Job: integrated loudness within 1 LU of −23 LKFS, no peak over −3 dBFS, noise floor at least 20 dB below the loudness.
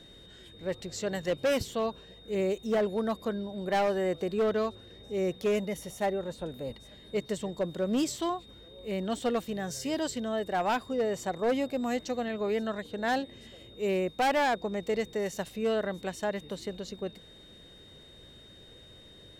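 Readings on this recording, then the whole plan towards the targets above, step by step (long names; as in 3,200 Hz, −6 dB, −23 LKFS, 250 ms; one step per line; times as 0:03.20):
share of clipped samples 1.5%; peaks flattened at −22.5 dBFS; interfering tone 3,700 Hz; level of the tone −53 dBFS; integrated loudness −31.5 LKFS; sample peak −22.5 dBFS; target loudness −23.0 LKFS
→ clipped peaks rebuilt −22.5 dBFS
notch filter 3,700 Hz, Q 30
level +8.5 dB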